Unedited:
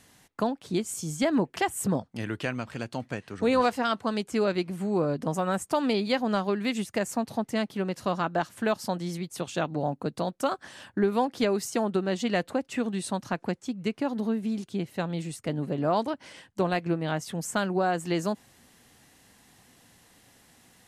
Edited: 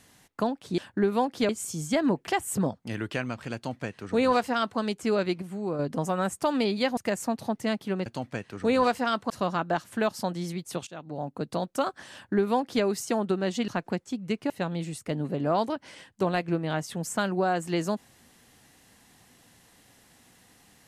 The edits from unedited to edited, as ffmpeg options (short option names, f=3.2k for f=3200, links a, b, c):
-filter_complex "[0:a]asplit=11[a][b][c][d][e][f][g][h][i][j][k];[a]atrim=end=0.782[l];[b]atrim=start=10.778:end=11.492[m];[c]atrim=start=0.778:end=4.712[n];[d]atrim=start=4.708:end=5.082,asetpts=PTS-STARTPTS,volume=-5dB[o];[e]atrim=start=5.078:end=6.262[p];[f]atrim=start=6.858:end=7.952[q];[g]atrim=start=2.838:end=4.082[r];[h]atrim=start=7.948:end=9.52,asetpts=PTS-STARTPTS,afade=t=out:st=1.568:d=0.004:c=hsin:silence=0.1[s];[i]atrim=start=9.52:end=12.332,asetpts=PTS-STARTPTS,afade=t=in:d=0.67:silence=0.1[t];[j]atrim=start=13.238:end=14.062[u];[k]atrim=start=14.878[v];[l][m]acrossfade=d=0.004:c1=hsin:c2=hsin[w];[w][n]acrossfade=d=0.004:c1=hsin:c2=hsin[x];[x][o]acrossfade=d=0.004:c1=hsin:c2=hsin[y];[y][p]acrossfade=d=0.004:c1=hsin:c2=hsin[z];[z][q]acrossfade=d=0.004:c1=hsin:c2=hsin[aa];[aa][r]acrossfade=d=0.004:c1=hsin:c2=hsin[ab];[s][t]concat=n=2:v=0:a=1[ac];[ab][ac]acrossfade=d=0.004:c1=hsin:c2=hsin[ad];[ad][u]acrossfade=d=0.004:c1=hsin:c2=hsin[ae];[ae][v]acrossfade=d=0.004:c1=hsin:c2=hsin"